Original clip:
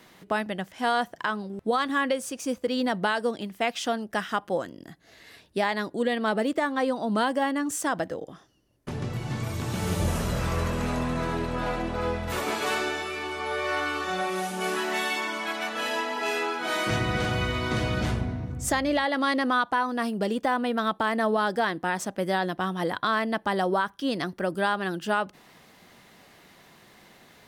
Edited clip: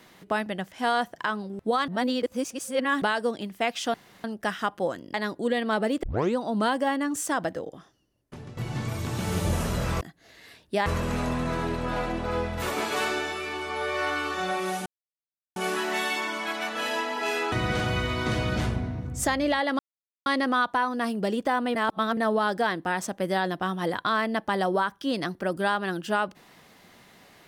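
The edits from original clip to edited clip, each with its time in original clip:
1.88–3.02 s: reverse
3.94 s: insert room tone 0.30 s
4.84–5.69 s: move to 10.56 s
6.58 s: tape start 0.33 s
8.14–9.12 s: fade out, to -13 dB
14.56 s: insert silence 0.70 s
16.52–16.97 s: delete
19.24 s: insert silence 0.47 s
20.73–21.15 s: reverse

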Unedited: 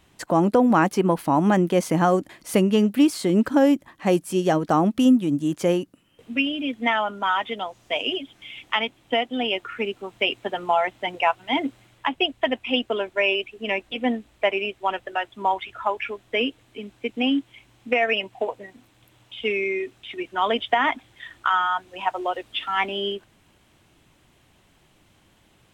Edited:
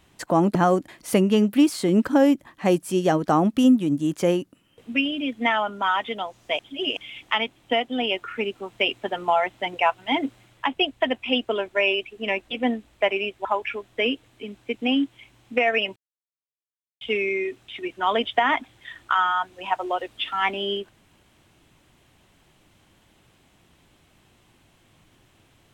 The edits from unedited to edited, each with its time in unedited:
0.55–1.96 s: delete
8.00–8.38 s: reverse
14.86–15.80 s: delete
18.31–19.36 s: mute

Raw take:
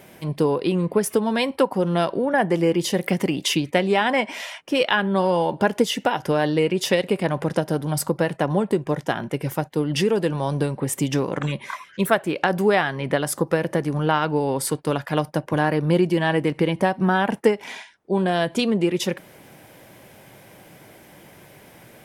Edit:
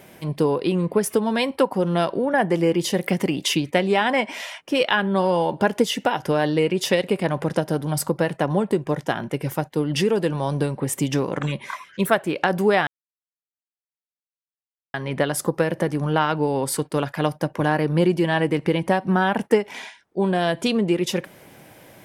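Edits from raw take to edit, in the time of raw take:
12.87 s: insert silence 2.07 s

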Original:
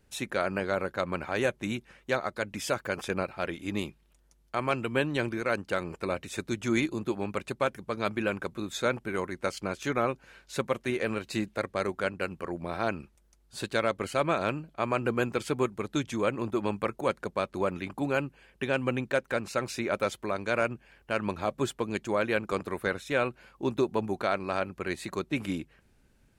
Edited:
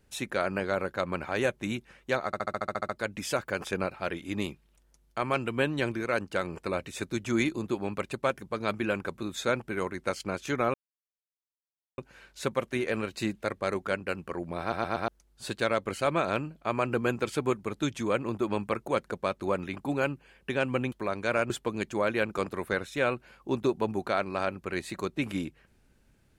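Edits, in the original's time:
2.26 s: stutter 0.07 s, 10 plays
10.11 s: insert silence 1.24 s
12.73 s: stutter in place 0.12 s, 4 plays
19.05–20.15 s: delete
20.73–21.64 s: delete

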